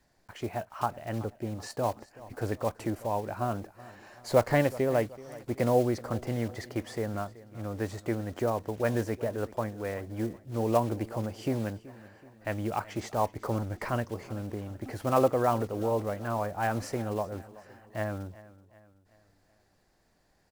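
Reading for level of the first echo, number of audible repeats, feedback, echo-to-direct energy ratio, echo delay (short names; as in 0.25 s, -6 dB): -19.0 dB, 3, 48%, -18.0 dB, 0.378 s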